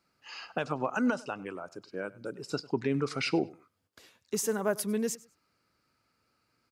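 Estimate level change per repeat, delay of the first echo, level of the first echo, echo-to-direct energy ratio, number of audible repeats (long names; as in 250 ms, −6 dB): −13.0 dB, 100 ms, −21.0 dB, −21.0 dB, 2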